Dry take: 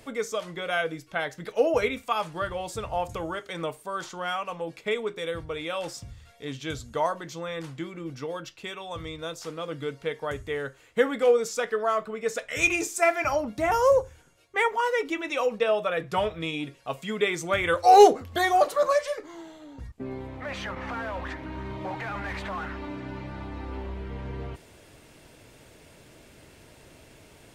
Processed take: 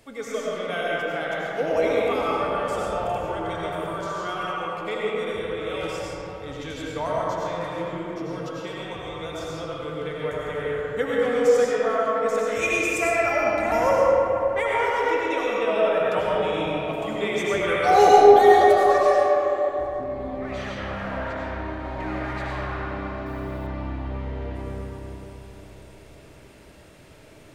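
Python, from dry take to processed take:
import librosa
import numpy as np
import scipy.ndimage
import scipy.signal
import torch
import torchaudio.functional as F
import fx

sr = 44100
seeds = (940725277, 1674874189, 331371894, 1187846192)

y = fx.rev_freeverb(x, sr, rt60_s=4.0, hf_ratio=0.4, predelay_ms=55, drr_db=-6.5)
y = fx.quant_dither(y, sr, seeds[0], bits=10, dither='triangular', at=(23.26, 23.67))
y = y * librosa.db_to_amplitude(-4.5)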